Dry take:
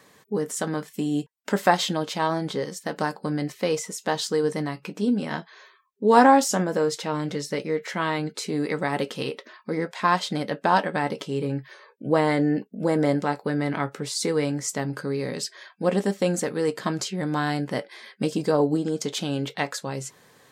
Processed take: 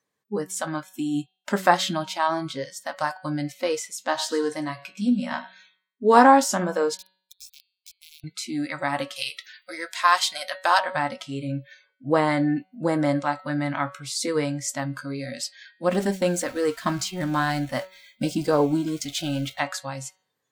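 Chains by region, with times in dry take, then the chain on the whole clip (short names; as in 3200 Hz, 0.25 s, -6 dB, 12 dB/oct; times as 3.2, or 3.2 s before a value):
4.02–6.18 doubler 16 ms -9.5 dB + feedback echo 0.103 s, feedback 32%, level -14 dB
6.97–8.24 inverse Chebyshev high-pass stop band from 870 Hz, stop band 70 dB + requantised 6-bit, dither none + compressor 8:1, threshold -39 dBFS
9.16–10.79 tilt +3.5 dB/oct + notch 900 Hz, Q 24
15.9–19.59 zero-crossing step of -35 dBFS + expander -30 dBFS + de-esser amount 30%
whole clip: spectral noise reduction 25 dB; de-hum 187.4 Hz, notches 25; dynamic EQ 1200 Hz, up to +4 dB, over -38 dBFS, Q 1.7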